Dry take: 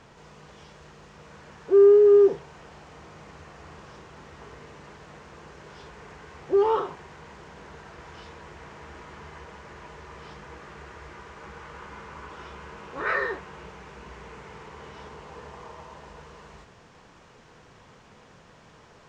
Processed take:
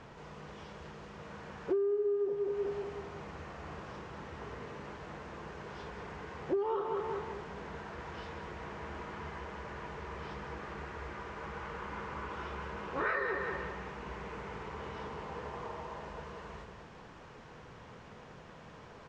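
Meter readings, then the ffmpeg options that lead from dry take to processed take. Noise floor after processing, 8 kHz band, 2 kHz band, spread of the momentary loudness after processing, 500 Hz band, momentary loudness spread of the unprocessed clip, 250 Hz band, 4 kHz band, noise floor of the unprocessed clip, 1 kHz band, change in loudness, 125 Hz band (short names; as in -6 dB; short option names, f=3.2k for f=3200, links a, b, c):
-52 dBFS, n/a, -4.0 dB, 19 LU, -13.0 dB, 21 LU, -8.0 dB, -3.5 dB, -54 dBFS, -4.0 dB, -19.0 dB, +0.5 dB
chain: -af "lowpass=f=2.9k:p=1,aecho=1:1:189|378|567|756|945:0.355|0.153|0.0656|0.0282|0.0121,acompressor=threshold=-30dB:ratio=16,volume=1dB"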